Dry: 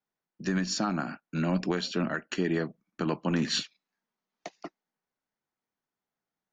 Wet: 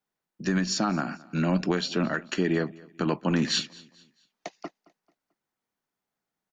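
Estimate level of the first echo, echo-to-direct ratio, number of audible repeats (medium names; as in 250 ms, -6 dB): -23.0 dB, -22.5 dB, 2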